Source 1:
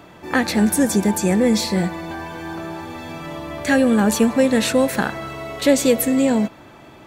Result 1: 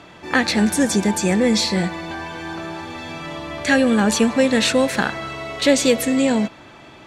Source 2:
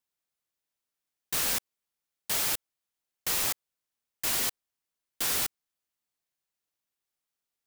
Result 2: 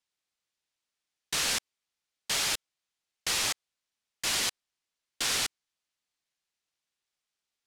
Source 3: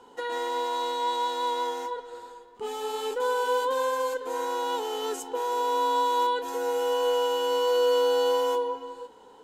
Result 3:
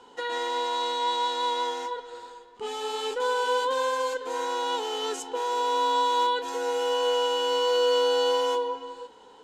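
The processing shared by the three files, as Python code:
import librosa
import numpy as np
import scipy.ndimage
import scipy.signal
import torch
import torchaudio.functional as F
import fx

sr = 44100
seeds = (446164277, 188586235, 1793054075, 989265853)

y = scipy.signal.sosfilt(scipy.signal.butter(2, 9100.0, 'lowpass', fs=sr, output='sos'), x)
y = fx.peak_eq(y, sr, hz=3600.0, db=6.0, octaves=2.6)
y = y * 10.0 ** (-1.0 / 20.0)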